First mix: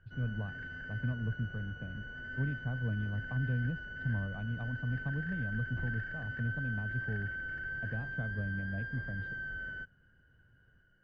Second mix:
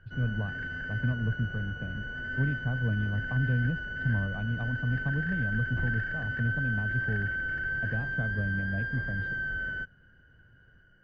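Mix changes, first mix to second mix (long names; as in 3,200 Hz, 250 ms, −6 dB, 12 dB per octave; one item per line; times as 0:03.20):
speech +5.5 dB
background +7.5 dB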